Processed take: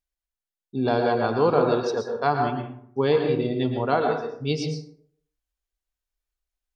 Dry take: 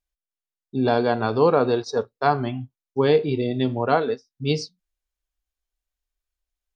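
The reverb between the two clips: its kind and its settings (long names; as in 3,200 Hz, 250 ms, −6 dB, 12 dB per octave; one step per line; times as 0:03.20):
dense smooth reverb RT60 0.63 s, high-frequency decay 0.5×, pre-delay 100 ms, DRR 3.5 dB
level −3 dB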